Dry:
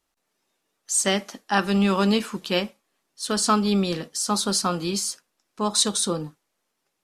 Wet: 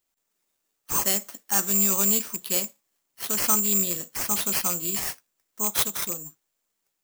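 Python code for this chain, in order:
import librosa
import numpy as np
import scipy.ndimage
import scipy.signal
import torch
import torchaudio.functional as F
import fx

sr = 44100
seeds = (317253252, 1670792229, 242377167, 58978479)

y = fx.rattle_buzz(x, sr, strikes_db=-29.0, level_db=-21.0)
y = (np.kron(y[::6], np.eye(6)[0]) * 6)[:len(y)]
y = fx.upward_expand(y, sr, threshold_db=-21.0, expansion=1.5, at=(5.7, 6.25), fade=0.02)
y = y * 10.0 ** (-9.5 / 20.0)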